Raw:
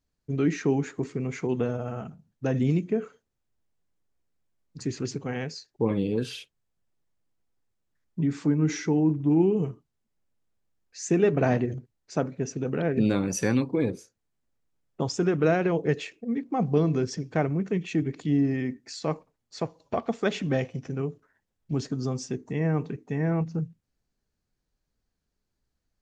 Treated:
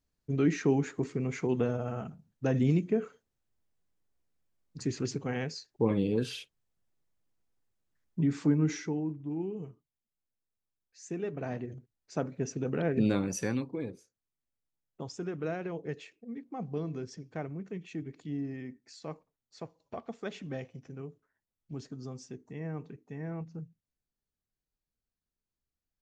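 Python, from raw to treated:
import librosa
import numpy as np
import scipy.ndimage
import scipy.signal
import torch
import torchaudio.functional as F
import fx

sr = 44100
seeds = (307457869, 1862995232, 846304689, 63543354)

y = fx.gain(x, sr, db=fx.line((8.55, -2.0), (9.19, -14.0), (11.44, -14.0), (12.42, -3.5), (13.15, -3.5), (13.93, -12.5)))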